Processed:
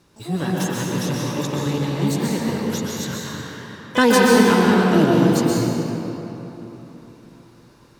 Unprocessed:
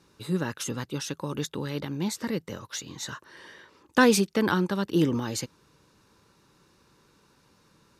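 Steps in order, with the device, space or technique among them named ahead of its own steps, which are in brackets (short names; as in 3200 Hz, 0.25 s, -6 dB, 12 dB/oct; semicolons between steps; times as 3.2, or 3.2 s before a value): shimmer-style reverb (harmoniser +12 st -9 dB; reverb RT60 3.5 s, pre-delay 0.118 s, DRR -4.5 dB); low shelf 130 Hz +5 dB; gain +2 dB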